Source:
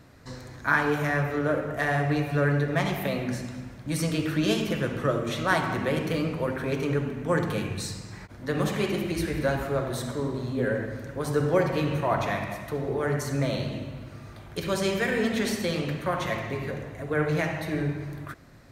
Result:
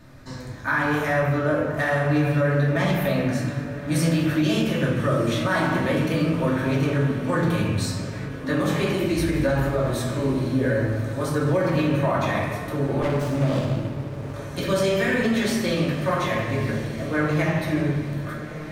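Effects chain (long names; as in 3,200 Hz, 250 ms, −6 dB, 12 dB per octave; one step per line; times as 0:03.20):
rectangular room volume 340 cubic metres, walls furnished, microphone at 2.6 metres
brickwall limiter −13 dBFS, peak gain reduction 8.5 dB
on a send: feedback delay with all-pass diffusion 1,312 ms, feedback 48%, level −13 dB
0:13.02–0:14.34: on the sum: windowed peak hold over 17 samples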